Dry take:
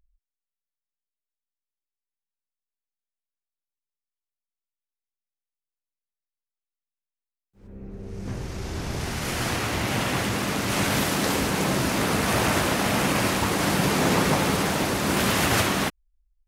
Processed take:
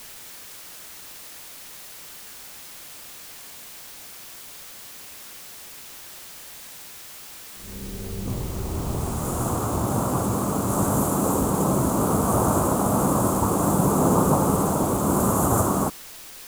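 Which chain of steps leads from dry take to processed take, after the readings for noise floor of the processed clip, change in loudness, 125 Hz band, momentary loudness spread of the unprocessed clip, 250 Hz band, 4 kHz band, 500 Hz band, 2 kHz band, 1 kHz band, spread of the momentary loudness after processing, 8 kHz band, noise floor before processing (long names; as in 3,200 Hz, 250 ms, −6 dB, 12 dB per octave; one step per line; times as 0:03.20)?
−42 dBFS, +1.0 dB, +3.5 dB, 12 LU, +3.0 dB, −11.5 dB, +2.5 dB, −13.0 dB, +2.5 dB, 18 LU, +2.0 dB, below −85 dBFS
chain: elliptic band-stop filter 1,200–7,200 Hz, stop band 40 dB
background noise white −45 dBFS
level +3.5 dB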